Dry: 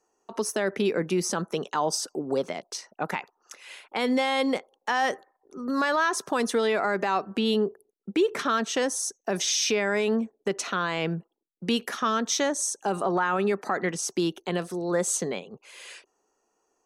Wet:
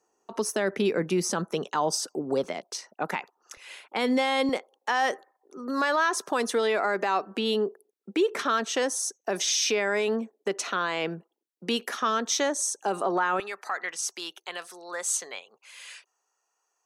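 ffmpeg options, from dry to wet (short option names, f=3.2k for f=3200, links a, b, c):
-af "asetnsamples=n=441:p=0,asendcmd='2.44 highpass f 170;3.57 highpass f 73;4.49 highpass f 270;13.4 highpass f 1000',highpass=61"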